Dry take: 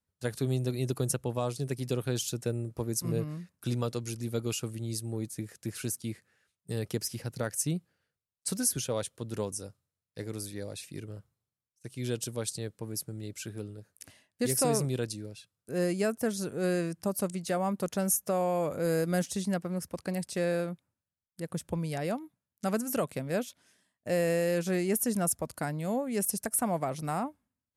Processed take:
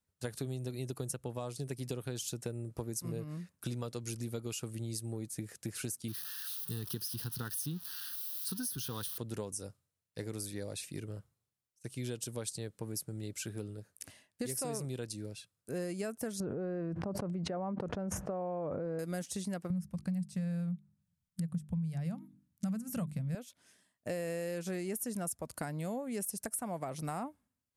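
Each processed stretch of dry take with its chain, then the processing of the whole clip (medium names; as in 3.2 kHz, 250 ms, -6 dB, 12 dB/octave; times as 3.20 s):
6.08–9.18 s: zero-crossing glitches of -29.5 dBFS + static phaser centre 2.2 kHz, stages 6
16.40–18.99 s: low-pass 1.1 kHz + level flattener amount 100%
19.70–23.35 s: resonant low shelf 250 Hz +12 dB, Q 3 + hum notches 50/100/150/200/250/300/350/400 Hz
whole clip: peaking EQ 8.7 kHz +2.5 dB 0.75 oct; compression, threshold -35 dBFS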